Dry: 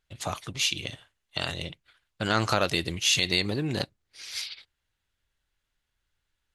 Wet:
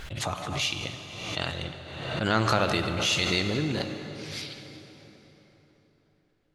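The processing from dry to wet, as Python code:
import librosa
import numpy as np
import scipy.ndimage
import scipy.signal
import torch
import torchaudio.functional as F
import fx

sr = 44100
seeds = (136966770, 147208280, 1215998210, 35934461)

y = fx.high_shelf(x, sr, hz=5000.0, db=-9.5)
y = fx.rev_plate(y, sr, seeds[0], rt60_s=4.1, hf_ratio=0.65, predelay_ms=0, drr_db=6.0)
y = fx.pre_swell(y, sr, db_per_s=43.0)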